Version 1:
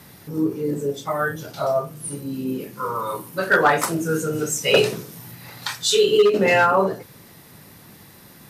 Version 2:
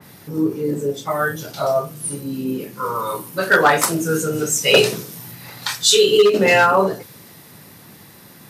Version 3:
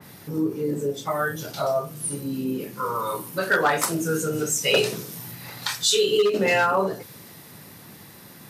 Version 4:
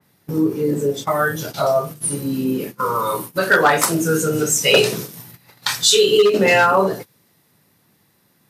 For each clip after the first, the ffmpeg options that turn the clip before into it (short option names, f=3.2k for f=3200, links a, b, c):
-af "highpass=83,adynamicequalizer=threshold=0.0251:dfrequency=2700:dqfactor=0.7:tfrequency=2700:tqfactor=0.7:attack=5:release=100:ratio=0.375:range=2.5:mode=boostabove:tftype=highshelf,volume=2.5dB"
-af "acompressor=threshold=-25dB:ratio=1.5,volume=-1.5dB"
-af "agate=range=-21dB:threshold=-35dB:ratio=16:detection=peak,volume=6.5dB"